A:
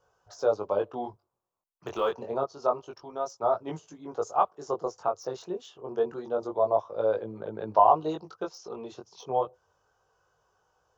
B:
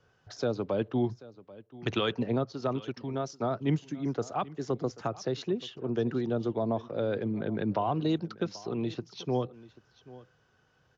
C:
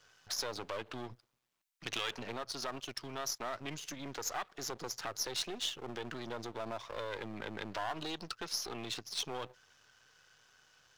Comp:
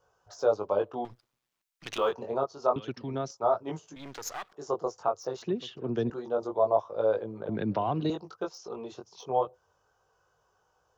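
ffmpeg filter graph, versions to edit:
-filter_complex "[2:a]asplit=2[a][b];[1:a]asplit=3[c][d][e];[0:a]asplit=6[f][g][h][i][j][k];[f]atrim=end=1.052[l];[a]atrim=start=1.048:end=1.982[m];[g]atrim=start=1.978:end=2.762[n];[c]atrim=start=2.758:end=3.312[o];[h]atrim=start=3.308:end=3.962[p];[b]atrim=start=3.958:end=4.532[q];[i]atrim=start=4.528:end=5.422[r];[d]atrim=start=5.418:end=6.102[s];[j]atrim=start=6.098:end=7.492[t];[e]atrim=start=7.488:end=8.102[u];[k]atrim=start=8.098[v];[l][m]acrossfade=d=0.004:c1=hsin:c2=hsin[w];[w][n]acrossfade=d=0.004:c1=hsin:c2=hsin[x];[x][o]acrossfade=d=0.004:c1=hsin:c2=hsin[y];[y][p]acrossfade=d=0.004:c1=hsin:c2=hsin[z];[z][q]acrossfade=d=0.004:c1=hsin:c2=hsin[aa];[aa][r]acrossfade=d=0.004:c1=hsin:c2=hsin[ab];[ab][s]acrossfade=d=0.004:c1=hsin:c2=hsin[ac];[ac][t]acrossfade=d=0.004:c1=hsin:c2=hsin[ad];[ad][u]acrossfade=d=0.004:c1=hsin:c2=hsin[ae];[ae][v]acrossfade=d=0.004:c1=hsin:c2=hsin"

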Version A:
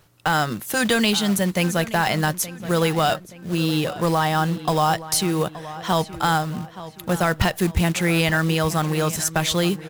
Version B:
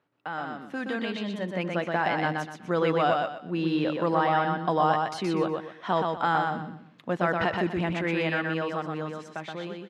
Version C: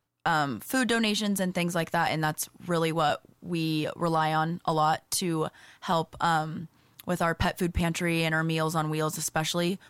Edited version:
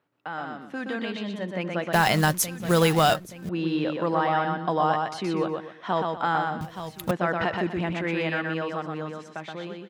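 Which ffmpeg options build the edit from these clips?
-filter_complex "[0:a]asplit=2[a][b];[1:a]asplit=3[c][d][e];[c]atrim=end=1.932[f];[a]atrim=start=1.928:end=3.492[g];[d]atrim=start=3.488:end=6.612[h];[b]atrim=start=6.608:end=7.112[i];[e]atrim=start=7.108[j];[f][g]acrossfade=d=0.004:c1=hsin:c2=hsin[k];[k][h]acrossfade=d=0.004:c1=hsin:c2=hsin[l];[l][i]acrossfade=d=0.004:c1=hsin:c2=hsin[m];[m][j]acrossfade=d=0.004:c1=hsin:c2=hsin"

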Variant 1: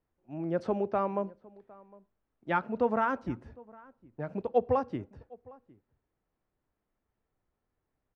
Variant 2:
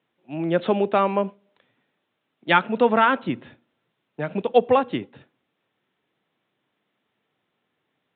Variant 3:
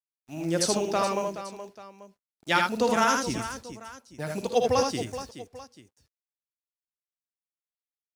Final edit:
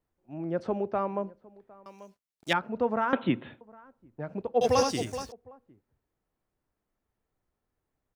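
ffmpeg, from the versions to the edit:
-filter_complex "[2:a]asplit=2[a][b];[0:a]asplit=4[c][d][e][f];[c]atrim=end=1.862[g];[a]atrim=start=1.858:end=2.532[h];[d]atrim=start=2.528:end=3.132[i];[1:a]atrim=start=3.128:end=3.612[j];[e]atrim=start=3.608:end=4.612[k];[b]atrim=start=4.608:end=5.322[l];[f]atrim=start=5.318[m];[g][h]acrossfade=d=0.004:c1=hsin:c2=hsin[n];[n][i]acrossfade=d=0.004:c1=hsin:c2=hsin[o];[o][j]acrossfade=d=0.004:c1=hsin:c2=hsin[p];[p][k]acrossfade=d=0.004:c1=hsin:c2=hsin[q];[q][l]acrossfade=d=0.004:c1=hsin:c2=hsin[r];[r][m]acrossfade=d=0.004:c1=hsin:c2=hsin"

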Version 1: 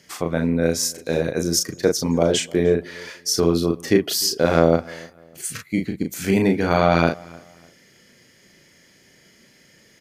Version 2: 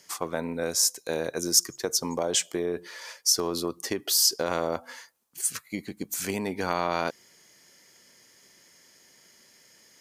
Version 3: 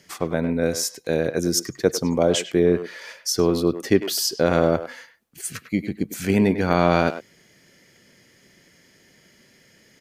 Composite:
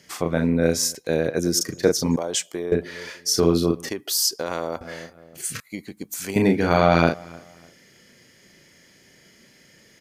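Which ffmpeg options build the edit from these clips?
-filter_complex "[1:a]asplit=3[a][b][c];[0:a]asplit=5[d][e][f][g][h];[d]atrim=end=0.952[i];[2:a]atrim=start=0.948:end=1.612[j];[e]atrim=start=1.608:end=2.162[k];[a]atrim=start=2.158:end=2.722[l];[f]atrim=start=2.718:end=3.892[m];[b]atrim=start=3.888:end=4.812[n];[g]atrim=start=4.808:end=5.602[o];[c]atrim=start=5.598:end=6.362[p];[h]atrim=start=6.358[q];[i][j]acrossfade=d=0.004:c1=hsin:c2=hsin[r];[r][k]acrossfade=d=0.004:c1=hsin:c2=hsin[s];[s][l]acrossfade=d=0.004:c1=hsin:c2=hsin[t];[t][m]acrossfade=d=0.004:c1=hsin:c2=hsin[u];[u][n]acrossfade=d=0.004:c1=hsin:c2=hsin[v];[v][o]acrossfade=d=0.004:c1=hsin:c2=hsin[w];[w][p]acrossfade=d=0.004:c1=hsin:c2=hsin[x];[x][q]acrossfade=d=0.004:c1=hsin:c2=hsin"

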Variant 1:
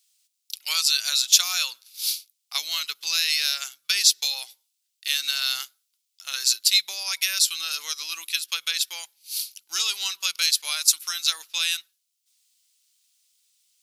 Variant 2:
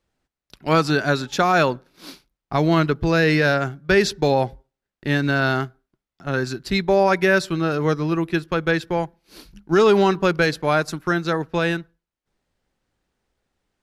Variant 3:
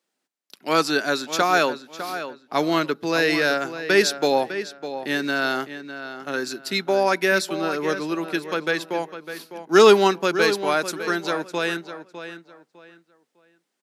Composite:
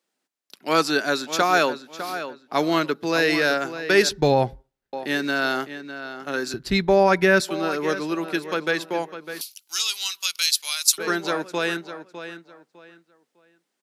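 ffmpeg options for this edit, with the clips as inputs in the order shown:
-filter_complex "[1:a]asplit=2[a][b];[2:a]asplit=4[c][d][e][f];[c]atrim=end=4.092[g];[a]atrim=start=4.088:end=4.932[h];[d]atrim=start=4.928:end=6.542[i];[b]atrim=start=6.538:end=7.402[j];[e]atrim=start=7.398:end=9.412[k];[0:a]atrim=start=9.408:end=10.982[l];[f]atrim=start=10.978[m];[g][h]acrossfade=d=0.004:c1=hsin:c2=hsin[n];[n][i]acrossfade=d=0.004:c1=hsin:c2=hsin[o];[o][j]acrossfade=d=0.004:c1=hsin:c2=hsin[p];[p][k]acrossfade=d=0.004:c1=hsin:c2=hsin[q];[q][l]acrossfade=d=0.004:c1=hsin:c2=hsin[r];[r][m]acrossfade=d=0.004:c1=hsin:c2=hsin"

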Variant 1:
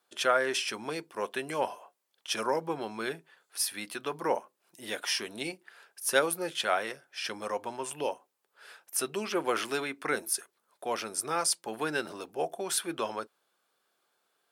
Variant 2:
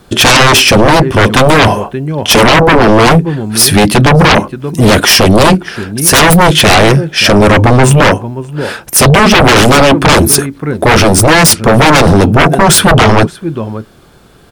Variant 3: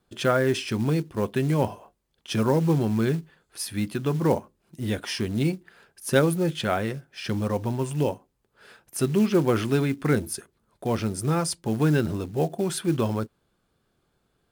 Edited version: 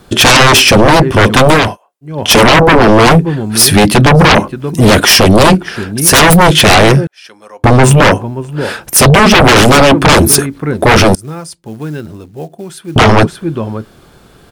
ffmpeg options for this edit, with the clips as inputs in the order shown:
-filter_complex "[0:a]asplit=2[a][b];[1:a]asplit=4[c][d][e][f];[c]atrim=end=1.77[g];[a]atrim=start=1.53:end=2.25[h];[d]atrim=start=2.01:end=7.072[i];[b]atrim=start=7.068:end=7.642[j];[e]atrim=start=7.638:end=11.152[k];[2:a]atrim=start=11.148:end=12.962[l];[f]atrim=start=12.958[m];[g][h]acrossfade=d=0.24:c1=tri:c2=tri[n];[n][i]acrossfade=d=0.24:c1=tri:c2=tri[o];[o][j]acrossfade=d=0.004:c1=hsin:c2=hsin[p];[p][k]acrossfade=d=0.004:c1=hsin:c2=hsin[q];[q][l]acrossfade=d=0.004:c1=hsin:c2=hsin[r];[r][m]acrossfade=d=0.004:c1=hsin:c2=hsin"

